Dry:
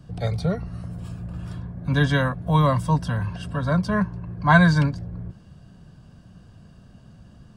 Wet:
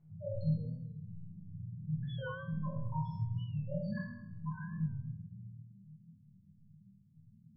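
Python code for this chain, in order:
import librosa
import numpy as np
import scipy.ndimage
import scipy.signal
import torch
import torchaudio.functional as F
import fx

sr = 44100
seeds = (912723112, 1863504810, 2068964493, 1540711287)

y = scipy.signal.sosfilt(scipy.signal.butter(2, 49.0, 'highpass', fs=sr, output='sos'), x)
y = fx.tilt_eq(y, sr, slope=3.5)
y = fx.over_compress(y, sr, threshold_db=-28.0, ratio=-1.0)
y = fx.spec_topn(y, sr, count=1)
y = fx.step_gate(y, sr, bpm=185, pattern='xxxx.x.x.', floor_db=-60.0, edge_ms=4.5)
y = fx.air_absorb(y, sr, metres=470.0)
y = fx.resonator_bank(y, sr, root=39, chord='major', decay_s=0.71)
y = fx.room_shoebox(y, sr, seeds[0], volume_m3=670.0, walls='furnished', distance_m=7.3)
y = fx.record_warp(y, sr, rpm=45.0, depth_cents=100.0)
y = F.gain(torch.from_numpy(y), 10.0).numpy()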